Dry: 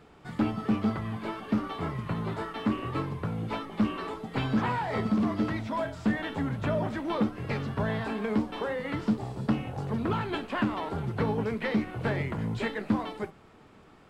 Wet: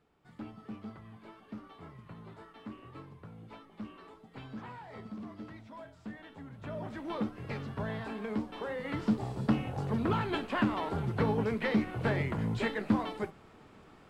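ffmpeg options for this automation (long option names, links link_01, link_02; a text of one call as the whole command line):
ffmpeg -i in.wav -af "volume=-1dB,afade=type=in:start_time=6.52:duration=0.56:silence=0.316228,afade=type=in:start_time=8.58:duration=0.66:silence=0.501187" out.wav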